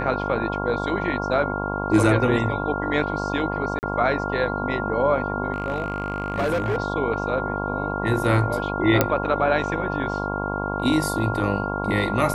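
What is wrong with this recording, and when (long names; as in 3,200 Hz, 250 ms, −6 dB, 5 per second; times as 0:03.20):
mains buzz 50 Hz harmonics 22 −28 dBFS
whistle 1,400 Hz −29 dBFS
0:03.79–0:03.83: drop-out 39 ms
0:05.52–0:06.78: clipping −19 dBFS
0:09.01: click −2 dBFS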